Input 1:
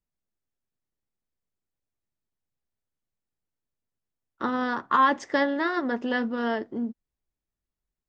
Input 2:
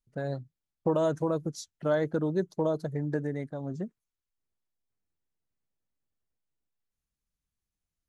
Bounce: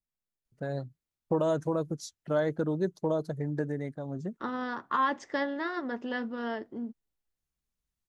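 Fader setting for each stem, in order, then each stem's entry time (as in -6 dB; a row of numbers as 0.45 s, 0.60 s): -7.0 dB, -1.0 dB; 0.00 s, 0.45 s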